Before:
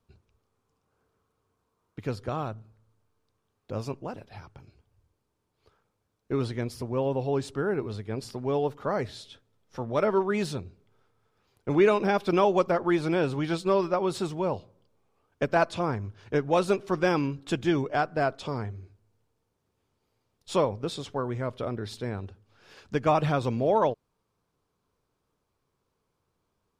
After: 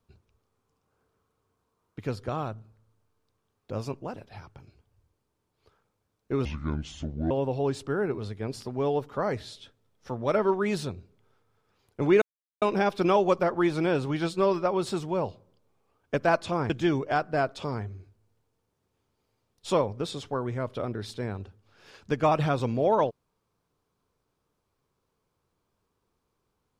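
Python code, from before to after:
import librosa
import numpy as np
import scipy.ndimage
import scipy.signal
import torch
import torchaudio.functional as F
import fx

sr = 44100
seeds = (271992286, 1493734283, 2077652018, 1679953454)

y = fx.edit(x, sr, fx.speed_span(start_s=6.45, length_s=0.54, speed=0.63),
    fx.insert_silence(at_s=11.9, length_s=0.4),
    fx.cut(start_s=15.98, length_s=1.55), tone=tone)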